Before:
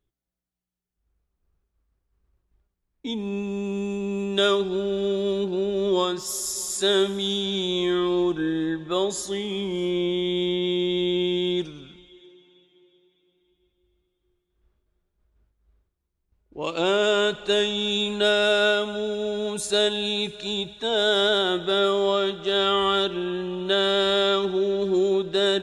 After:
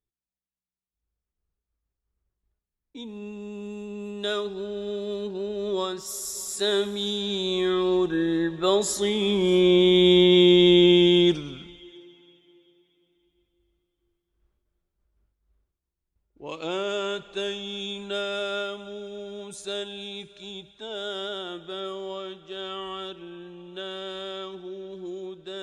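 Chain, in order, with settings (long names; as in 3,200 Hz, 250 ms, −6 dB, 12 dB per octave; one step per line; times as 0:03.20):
source passing by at 0:10.40, 11 m/s, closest 11 metres
level +8.5 dB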